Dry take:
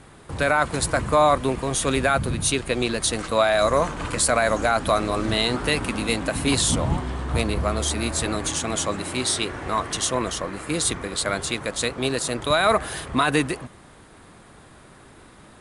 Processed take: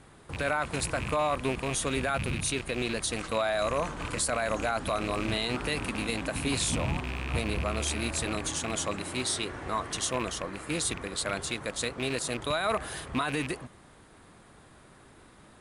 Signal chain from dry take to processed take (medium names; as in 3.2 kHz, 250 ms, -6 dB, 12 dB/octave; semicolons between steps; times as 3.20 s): rattle on loud lows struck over -28 dBFS, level -18 dBFS; peak limiter -12 dBFS, peak gain reduction 6 dB; trim -6.5 dB